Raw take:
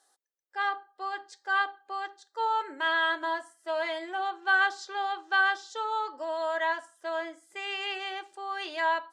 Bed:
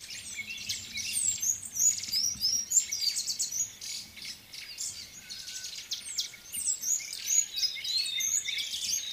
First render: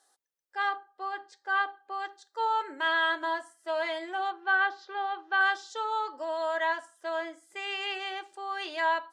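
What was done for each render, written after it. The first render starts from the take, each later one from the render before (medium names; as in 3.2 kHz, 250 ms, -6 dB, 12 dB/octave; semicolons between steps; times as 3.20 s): 0.77–2.00 s: treble shelf 4.4 kHz -10 dB; 4.32–5.41 s: distance through air 240 m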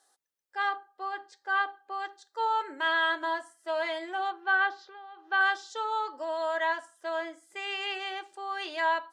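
4.81–5.29 s: compression 3:1, threshold -49 dBFS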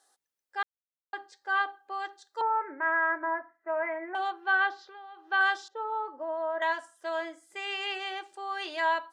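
0.63–1.13 s: mute; 2.41–4.15 s: steep low-pass 2.3 kHz 72 dB/octave; 5.68–6.62 s: low-pass 1.1 kHz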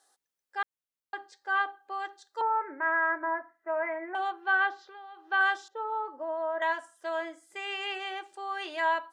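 dynamic bell 4.6 kHz, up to -6 dB, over -53 dBFS, Q 1.8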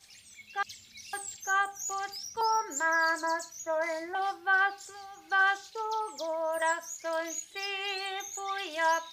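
add bed -12.5 dB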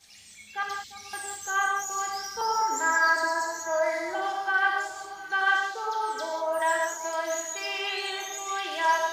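echo whose repeats swap between lows and highs 348 ms, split 1.2 kHz, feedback 58%, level -12.5 dB; gated-style reverb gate 220 ms flat, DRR -1 dB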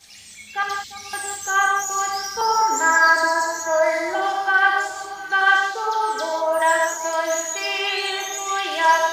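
trim +7.5 dB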